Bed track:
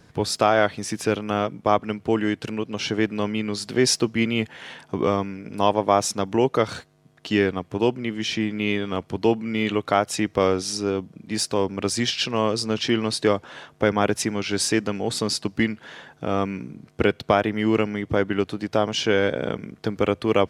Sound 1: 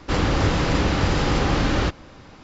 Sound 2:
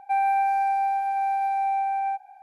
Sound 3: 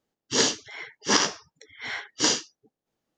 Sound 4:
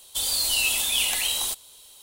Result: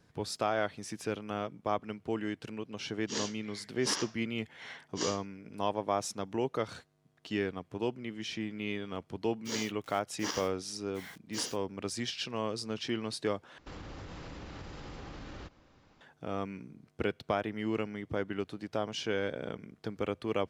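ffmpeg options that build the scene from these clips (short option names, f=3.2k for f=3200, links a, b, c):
-filter_complex "[3:a]asplit=2[a][b];[0:a]volume=-12.5dB[c];[b]acrusher=bits=5:mix=0:aa=0.000001[d];[1:a]acompressor=threshold=-23dB:ratio=6:attack=3.2:release=140:knee=1:detection=peak[e];[c]asplit=2[f][g];[f]atrim=end=13.584[h];[e]atrim=end=2.43,asetpts=PTS-STARTPTS,volume=-18dB[i];[g]atrim=start=16.006[j];[a]atrim=end=3.17,asetpts=PTS-STARTPTS,volume=-14.5dB,afade=t=in:d=0.004:c=hsin,afade=t=out:st=3.166:d=0.004:c=hsin,adelay=2770[k];[d]atrim=end=3.17,asetpts=PTS-STARTPTS,volume=-16dB,afade=t=in:d=0.004:c=hsin,afade=t=out:st=3.166:d=0.004:c=hsin,adelay=403074S[l];[h][i]acrossfade=d=0.004:c1=hsin:c2=hsin[m];[m][j]acrossfade=d=0.004:c1=hsin:c2=hsin[n];[n][k][l]amix=inputs=3:normalize=0"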